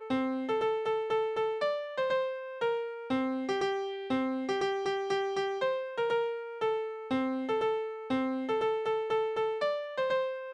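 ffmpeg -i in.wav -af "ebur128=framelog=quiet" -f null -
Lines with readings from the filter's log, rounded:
Integrated loudness:
  I:         -31.8 LUFS
  Threshold: -41.8 LUFS
Loudness range:
  LRA:         0.8 LU
  Threshold: -51.9 LUFS
  LRA low:   -32.3 LUFS
  LRA high:  -31.5 LUFS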